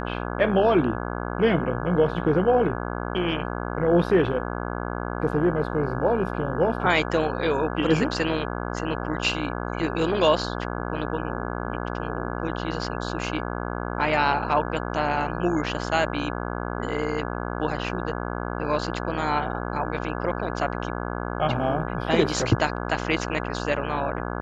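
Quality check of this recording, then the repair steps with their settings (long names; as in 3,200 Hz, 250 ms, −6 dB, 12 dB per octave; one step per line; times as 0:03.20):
mains buzz 60 Hz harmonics 28 −30 dBFS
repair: hum removal 60 Hz, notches 28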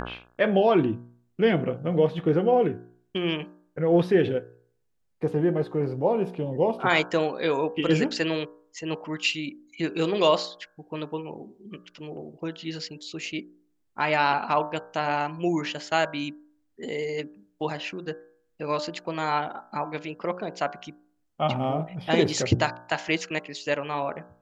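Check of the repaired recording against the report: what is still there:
none of them is left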